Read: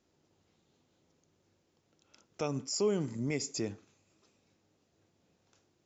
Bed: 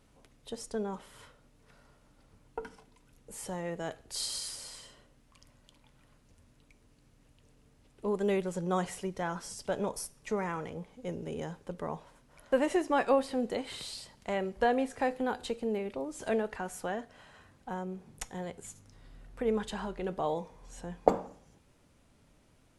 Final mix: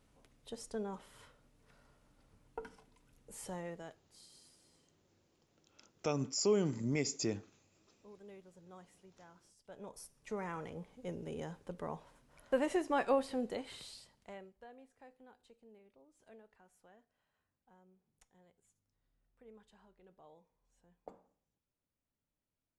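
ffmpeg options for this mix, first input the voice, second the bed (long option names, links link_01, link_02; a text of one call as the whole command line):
ffmpeg -i stem1.wav -i stem2.wav -filter_complex "[0:a]adelay=3650,volume=-0.5dB[link_01];[1:a]volume=14.5dB,afade=type=out:start_time=3.57:duration=0.47:silence=0.105925,afade=type=in:start_time=9.63:duration=1.09:silence=0.1,afade=type=out:start_time=13.35:duration=1.23:silence=0.0707946[link_02];[link_01][link_02]amix=inputs=2:normalize=0" out.wav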